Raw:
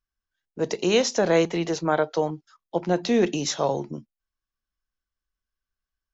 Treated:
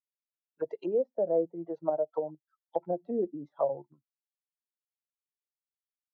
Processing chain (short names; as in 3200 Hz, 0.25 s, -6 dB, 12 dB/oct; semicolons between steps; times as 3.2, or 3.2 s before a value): per-bin expansion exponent 2; treble ducked by the level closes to 380 Hz, closed at -24.5 dBFS; in parallel at -3 dB: level quantiser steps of 21 dB; on the sum: auto-wah 610–2900 Hz, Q 3.4, down, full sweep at -30.5 dBFS; gain +6.5 dB